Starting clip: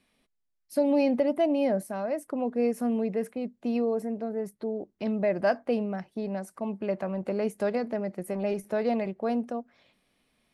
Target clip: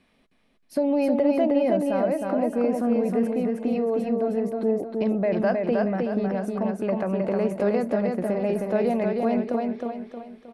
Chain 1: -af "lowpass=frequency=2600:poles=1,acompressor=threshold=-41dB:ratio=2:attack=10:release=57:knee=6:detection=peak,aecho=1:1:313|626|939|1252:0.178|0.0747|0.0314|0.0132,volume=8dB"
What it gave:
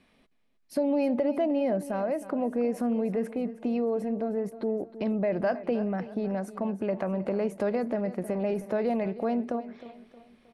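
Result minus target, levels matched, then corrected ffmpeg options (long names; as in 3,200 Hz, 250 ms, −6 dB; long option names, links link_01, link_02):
echo-to-direct −12 dB; downward compressor: peak gain reduction +3 dB
-af "lowpass=frequency=2600:poles=1,acompressor=threshold=-34.5dB:ratio=2:attack=10:release=57:knee=6:detection=peak,aecho=1:1:313|626|939|1252|1565:0.708|0.297|0.125|0.0525|0.022,volume=8dB"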